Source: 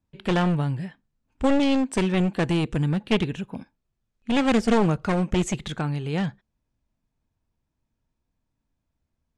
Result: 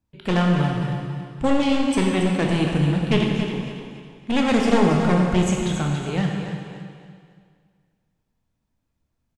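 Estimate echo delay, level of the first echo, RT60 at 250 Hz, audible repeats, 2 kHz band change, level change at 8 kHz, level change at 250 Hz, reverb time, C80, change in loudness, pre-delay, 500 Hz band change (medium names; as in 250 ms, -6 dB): 279 ms, -9.5 dB, 2.1 s, 3, +3.5 dB, +3.5 dB, +3.0 dB, 2.1 s, 2.0 dB, +2.5 dB, 7 ms, +3.0 dB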